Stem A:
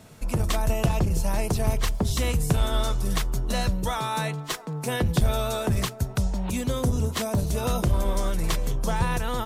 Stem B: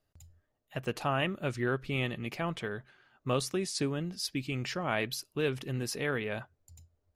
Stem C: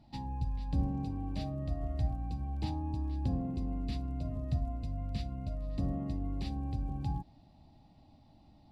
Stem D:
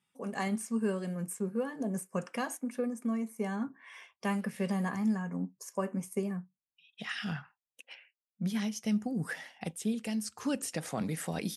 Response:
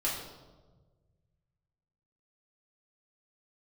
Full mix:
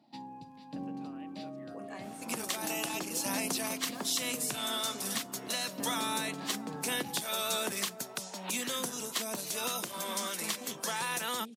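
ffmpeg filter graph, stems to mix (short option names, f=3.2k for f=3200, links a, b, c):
-filter_complex "[0:a]acrossover=split=440|900|6300[a][b][c][d];[a]acompressor=threshold=-35dB:ratio=4[e];[b]acompressor=threshold=-46dB:ratio=4[f];[c]acompressor=threshold=-34dB:ratio=4[g];[d]acompressor=threshold=-39dB:ratio=4[h];[e][f][g][h]amix=inputs=4:normalize=0,alimiter=limit=-22.5dB:level=0:latency=1:release=295,adynamicequalizer=threshold=0.00316:dfrequency=2000:dqfactor=0.7:tfrequency=2000:tqfactor=0.7:attack=5:release=100:ratio=0.375:range=3:mode=boostabove:tftype=highshelf,adelay=2000,volume=-1dB[i];[1:a]acompressor=threshold=-33dB:ratio=6,highshelf=f=9.6k:g=-11.5,volume=-18.5dB[j];[2:a]volume=-1dB[k];[3:a]acompressor=threshold=-36dB:ratio=6,adelay=1550,volume=-8dB,asplit=2[l][m];[m]volume=-14.5dB[n];[4:a]atrim=start_sample=2205[o];[n][o]afir=irnorm=-1:irlink=0[p];[i][j][k][l][p]amix=inputs=5:normalize=0,highpass=f=210:w=0.5412,highpass=f=210:w=1.3066"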